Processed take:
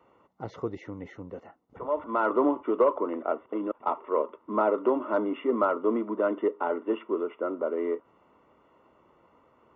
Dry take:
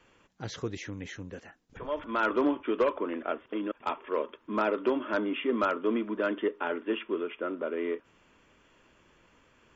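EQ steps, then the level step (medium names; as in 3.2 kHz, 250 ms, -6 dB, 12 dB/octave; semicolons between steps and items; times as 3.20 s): Savitzky-Golay filter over 65 samples; high-pass 61 Hz; bass shelf 350 Hz -11.5 dB; +8.0 dB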